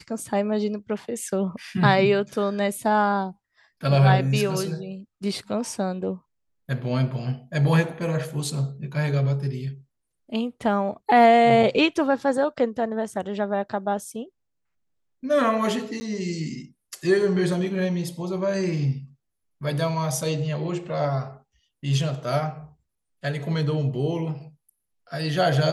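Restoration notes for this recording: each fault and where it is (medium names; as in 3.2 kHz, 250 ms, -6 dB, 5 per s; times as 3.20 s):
16.00–16.01 s: dropout 10 ms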